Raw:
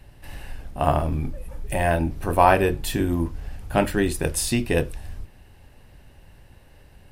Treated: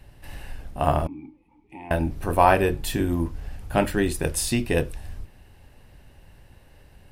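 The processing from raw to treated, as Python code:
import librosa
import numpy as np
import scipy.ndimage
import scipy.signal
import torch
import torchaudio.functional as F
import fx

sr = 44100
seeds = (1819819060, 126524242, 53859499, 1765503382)

y = fx.vowel_filter(x, sr, vowel='u', at=(1.07, 1.91))
y = F.gain(torch.from_numpy(y), -1.0).numpy()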